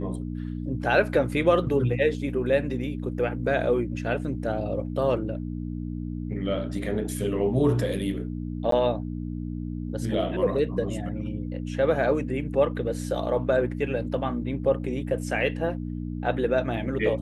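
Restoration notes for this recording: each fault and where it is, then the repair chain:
hum 60 Hz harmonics 5 -32 dBFS
8.71–8.72 gap 13 ms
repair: de-hum 60 Hz, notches 5; interpolate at 8.71, 13 ms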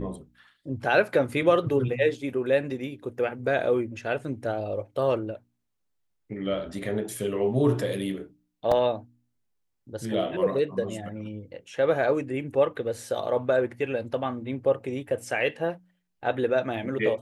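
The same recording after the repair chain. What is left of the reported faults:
none

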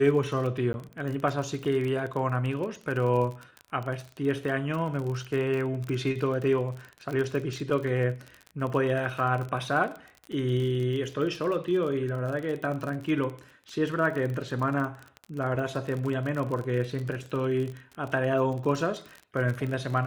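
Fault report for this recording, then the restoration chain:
crackle 37/s -32 dBFS
0.73–0.74 gap 11 ms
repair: de-click; interpolate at 0.73, 11 ms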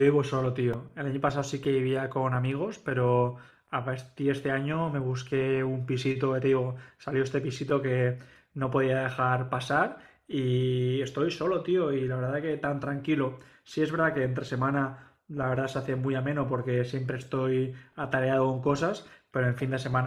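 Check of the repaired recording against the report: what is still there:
none

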